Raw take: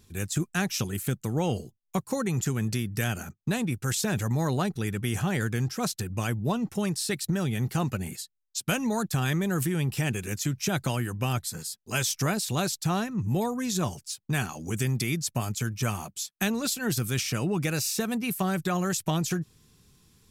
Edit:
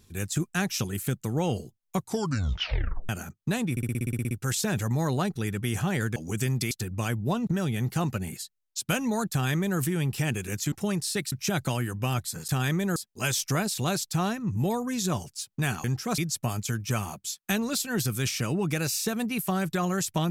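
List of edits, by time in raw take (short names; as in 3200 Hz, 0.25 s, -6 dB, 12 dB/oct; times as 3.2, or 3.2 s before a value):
1.97 tape stop 1.12 s
3.71 stutter 0.06 s, 11 plays
5.56–5.9 swap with 14.55–15.1
6.66–7.26 move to 10.51
9.1–9.58 copy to 11.67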